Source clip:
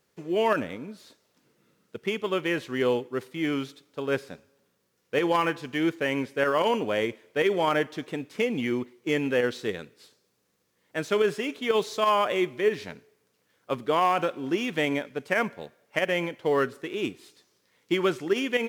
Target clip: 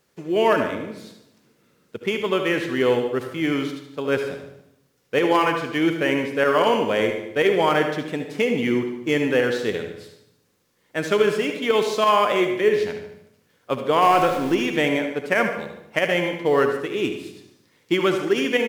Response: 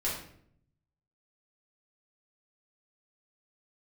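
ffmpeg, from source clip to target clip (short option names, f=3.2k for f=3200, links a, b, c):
-filter_complex "[0:a]asettb=1/sr,asplit=3[a][b][c];[a]atrim=end=14.024[d];[b]atrim=start=14.02:end=14.55,asetpts=PTS-STARTPTS,afade=t=in:d=0.004:c=qsin,afade=t=out:st=0.526:d=0.004:c=qsin,aeval=exprs='val(0)+0.5*0.0211*sgn(val(0))':c=same[e];[c]atrim=start=14.546[f];[d][e]acrossfade=d=0.004:c1=hsin:c2=qsin[g];[g][f]acrossfade=d=0.004:c1=qsin:c2=hsin,aecho=1:1:74|148|222|296|370|444:0.237|0.128|0.0691|0.0373|0.0202|0.0109,asplit=2[h][i];[1:a]atrim=start_sample=2205,adelay=62[j];[i][j]afir=irnorm=-1:irlink=0,volume=-14dB[k];[h][k]amix=inputs=2:normalize=0,volume=4.5dB"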